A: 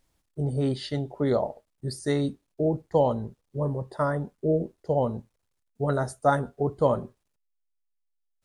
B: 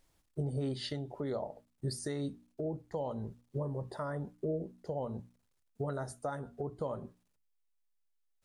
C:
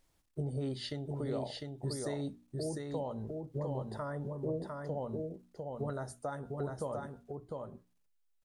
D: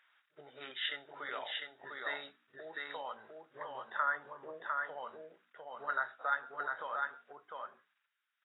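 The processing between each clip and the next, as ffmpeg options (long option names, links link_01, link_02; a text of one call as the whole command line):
ffmpeg -i in.wav -af "bandreject=frequency=60:width_type=h:width=6,bandreject=frequency=120:width_type=h:width=6,bandreject=frequency=180:width_type=h:width=6,bandreject=frequency=240:width_type=h:width=6,bandreject=frequency=300:width_type=h:width=6,acompressor=threshold=-32dB:ratio=2.5,alimiter=level_in=3dB:limit=-24dB:level=0:latency=1:release=431,volume=-3dB" out.wav
ffmpeg -i in.wav -af "aecho=1:1:702:0.668,volume=-1.5dB" out.wav
ffmpeg -i in.wav -af "highpass=frequency=1500:width_type=q:width=3.3,volume=7.5dB" -ar 16000 -c:a aac -b:a 16k out.aac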